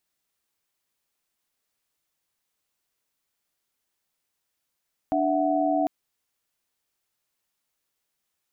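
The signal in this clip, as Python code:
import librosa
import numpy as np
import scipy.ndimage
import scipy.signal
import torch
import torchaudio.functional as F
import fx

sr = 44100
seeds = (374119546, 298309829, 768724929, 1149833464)

y = fx.chord(sr, length_s=0.75, notes=(62, 76, 78), wave='sine', level_db=-25.0)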